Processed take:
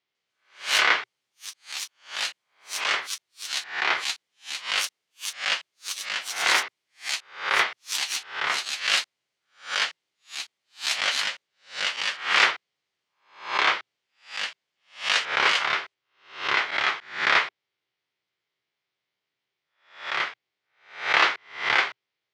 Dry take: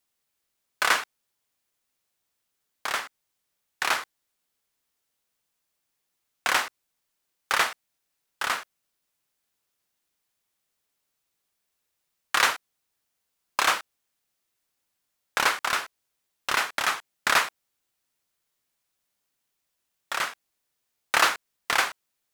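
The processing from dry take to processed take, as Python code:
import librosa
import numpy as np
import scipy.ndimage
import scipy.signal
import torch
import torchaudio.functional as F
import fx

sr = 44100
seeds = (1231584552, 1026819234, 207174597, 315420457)

y = fx.spec_swells(x, sr, rise_s=0.46)
y = fx.cabinet(y, sr, low_hz=120.0, low_slope=12, high_hz=4900.0, hz=(120.0, 240.0, 390.0, 2100.0, 3200.0), db=(6, -5, 6, 7, 4))
y = fx.echo_pitch(y, sr, ms=149, semitones=6, count=3, db_per_echo=-3.0)
y = y * 10.0 ** (-3.0 / 20.0)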